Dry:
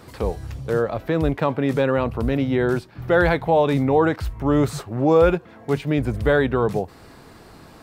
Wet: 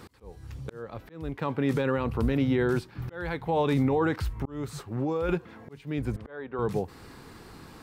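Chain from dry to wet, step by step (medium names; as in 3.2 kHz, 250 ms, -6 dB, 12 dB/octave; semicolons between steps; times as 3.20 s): peaking EQ 640 Hz -8.5 dB 0.37 oct; slow attack 698 ms; peak limiter -15 dBFS, peak gain reduction 8.5 dB; 4.17–5.29 s: compression 3:1, threshold -25 dBFS, peak gain reduction 5 dB; 6.16–6.59 s: band-pass filter 780 Hz, Q 0.66; trim -1.5 dB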